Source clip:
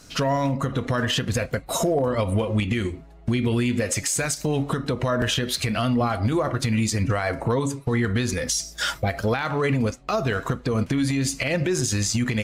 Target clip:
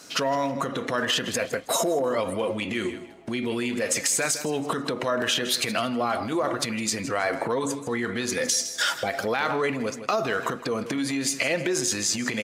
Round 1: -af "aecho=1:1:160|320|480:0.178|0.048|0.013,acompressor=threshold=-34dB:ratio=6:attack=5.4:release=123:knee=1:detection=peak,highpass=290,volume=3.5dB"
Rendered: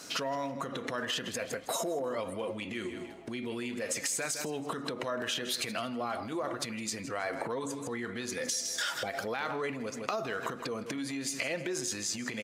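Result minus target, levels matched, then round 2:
downward compressor: peak gain reduction +9 dB
-af "aecho=1:1:160|320|480:0.178|0.048|0.013,acompressor=threshold=-23dB:ratio=6:attack=5.4:release=123:knee=1:detection=peak,highpass=290,volume=3.5dB"

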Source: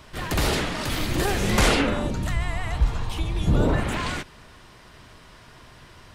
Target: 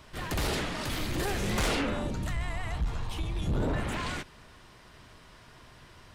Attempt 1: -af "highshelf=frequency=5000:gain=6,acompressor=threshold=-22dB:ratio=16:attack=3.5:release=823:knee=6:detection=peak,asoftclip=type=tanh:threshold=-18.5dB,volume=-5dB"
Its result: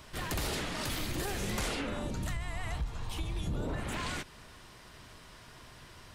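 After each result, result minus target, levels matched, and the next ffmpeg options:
downward compressor: peak gain reduction +11 dB; 8,000 Hz band +3.0 dB
-af "highshelf=frequency=5000:gain=6,asoftclip=type=tanh:threshold=-18.5dB,volume=-5dB"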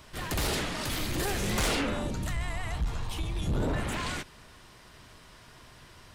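8,000 Hz band +3.5 dB
-af "asoftclip=type=tanh:threshold=-18.5dB,volume=-5dB"

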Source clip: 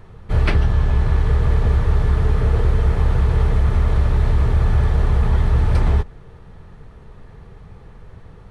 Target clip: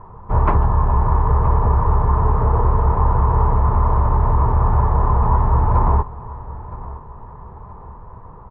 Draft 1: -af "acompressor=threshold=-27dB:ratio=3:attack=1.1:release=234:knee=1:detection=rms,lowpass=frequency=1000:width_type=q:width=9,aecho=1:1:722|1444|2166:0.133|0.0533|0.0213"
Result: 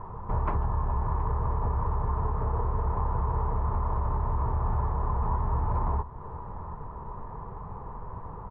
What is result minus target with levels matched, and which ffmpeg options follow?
downward compressor: peak gain reduction +13.5 dB; echo 247 ms early
-af "lowpass=frequency=1000:width_type=q:width=9,aecho=1:1:969|1938|2907:0.133|0.0533|0.0213"

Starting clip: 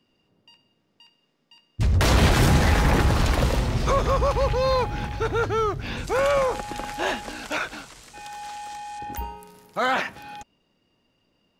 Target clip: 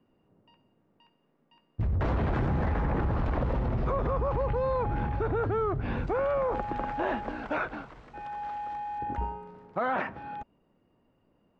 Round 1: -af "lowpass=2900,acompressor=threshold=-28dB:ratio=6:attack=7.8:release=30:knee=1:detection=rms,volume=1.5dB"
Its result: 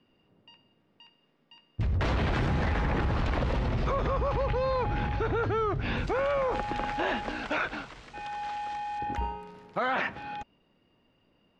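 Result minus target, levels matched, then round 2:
4,000 Hz band +11.0 dB
-af "lowpass=1300,acompressor=threshold=-28dB:ratio=6:attack=7.8:release=30:knee=1:detection=rms,volume=1.5dB"

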